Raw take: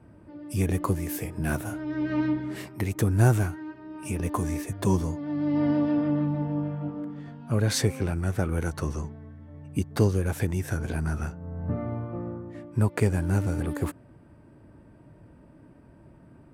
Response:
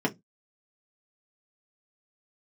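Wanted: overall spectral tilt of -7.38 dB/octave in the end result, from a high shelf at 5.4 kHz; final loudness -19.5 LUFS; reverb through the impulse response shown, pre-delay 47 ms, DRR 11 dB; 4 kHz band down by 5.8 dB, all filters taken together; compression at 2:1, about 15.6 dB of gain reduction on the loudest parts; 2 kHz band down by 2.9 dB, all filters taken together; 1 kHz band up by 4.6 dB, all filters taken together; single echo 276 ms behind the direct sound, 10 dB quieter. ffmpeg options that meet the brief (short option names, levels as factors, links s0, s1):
-filter_complex "[0:a]equalizer=f=1000:t=o:g=7.5,equalizer=f=2000:t=o:g=-7,equalizer=f=4000:t=o:g=-4,highshelf=f=5400:g=-4,acompressor=threshold=0.00501:ratio=2,aecho=1:1:276:0.316,asplit=2[s0][s1];[1:a]atrim=start_sample=2205,adelay=47[s2];[s1][s2]afir=irnorm=-1:irlink=0,volume=0.0891[s3];[s0][s3]amix=inputs=2:normalize=0,volume=8.91"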